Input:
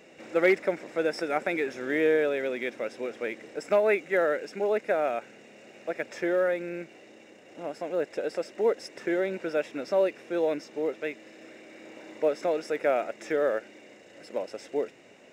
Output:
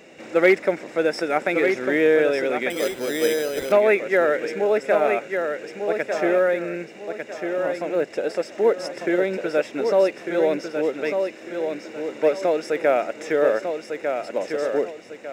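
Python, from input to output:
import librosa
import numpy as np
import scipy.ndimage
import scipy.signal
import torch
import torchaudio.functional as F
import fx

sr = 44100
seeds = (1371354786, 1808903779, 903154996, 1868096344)

y = fx.echo_feedback(x, sr, ms=1199, feedback_pct=33, wet_db=-6)
y = fx.resample_bad(y, sr, factor=8, down='none', up='hold', at=(2.7, 3.72))
y = y * 10.0 ** (6.0 / 20.0)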